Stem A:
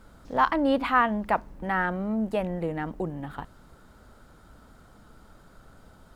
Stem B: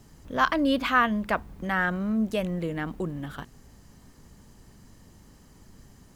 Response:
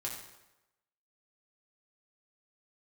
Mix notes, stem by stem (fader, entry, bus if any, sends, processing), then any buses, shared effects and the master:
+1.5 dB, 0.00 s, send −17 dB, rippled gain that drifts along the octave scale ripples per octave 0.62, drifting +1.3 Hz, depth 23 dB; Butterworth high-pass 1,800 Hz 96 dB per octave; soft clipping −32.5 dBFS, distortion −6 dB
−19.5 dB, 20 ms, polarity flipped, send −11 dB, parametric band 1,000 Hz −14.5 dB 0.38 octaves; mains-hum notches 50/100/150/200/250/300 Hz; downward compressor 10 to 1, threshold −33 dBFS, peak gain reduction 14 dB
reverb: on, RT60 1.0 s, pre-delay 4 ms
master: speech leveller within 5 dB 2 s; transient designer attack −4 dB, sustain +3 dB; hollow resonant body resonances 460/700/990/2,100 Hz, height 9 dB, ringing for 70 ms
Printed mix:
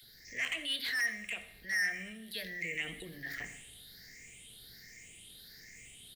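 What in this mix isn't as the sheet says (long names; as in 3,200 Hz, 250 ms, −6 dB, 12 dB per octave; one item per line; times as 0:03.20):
stem B: polarity flipped
reverb return +7.0 dB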